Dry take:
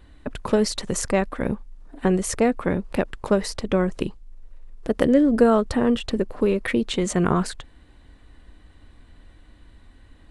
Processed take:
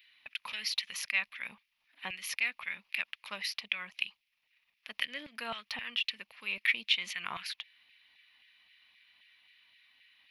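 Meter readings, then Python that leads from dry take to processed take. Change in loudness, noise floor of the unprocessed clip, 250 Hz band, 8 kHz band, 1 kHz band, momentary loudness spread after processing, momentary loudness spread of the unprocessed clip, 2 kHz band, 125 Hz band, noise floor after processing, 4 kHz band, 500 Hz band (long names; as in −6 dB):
−12.0 dB, −52 dBFS, −35.0 dB, −13.5 dB, −17.0 dB, 13 LU, 14 LU, −0.5 dB, below −30 dB, −80 dBFS, +1.0 dB, −32.5 dB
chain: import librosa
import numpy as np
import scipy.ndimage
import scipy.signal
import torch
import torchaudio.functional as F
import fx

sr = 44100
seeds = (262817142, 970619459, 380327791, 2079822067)

y = fx.filter_lfo_highpass(x, sr, shape='saw_down', hz=3.8, low_hz=790.0, high_hz=2100.0, q=1.7)
y = fx.curve_eq(y, sr, hz=(100.0, 210.0, 380.0, 1000.0, 1500.0, 2400.0, 5500.0, 8200.0, 12000.0), db=(0, -4, -22, -17, -17, 5, -6, -28, 4))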